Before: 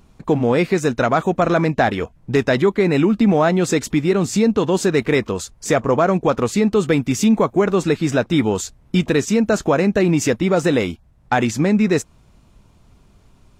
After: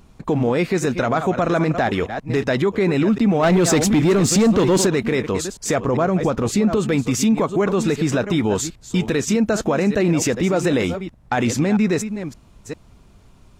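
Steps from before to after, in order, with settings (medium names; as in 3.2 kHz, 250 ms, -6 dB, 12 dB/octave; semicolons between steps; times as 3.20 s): chunks repeated in reverse 398 ms, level -13.5 dB; 3.43–4.87 s: waveshaping leveller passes 2; 5.88–6.77 s: bass shelf 370 Hz +6 dB; peak limiter -12 dBFS, peak gain reduction 9 dB; trim +2 dB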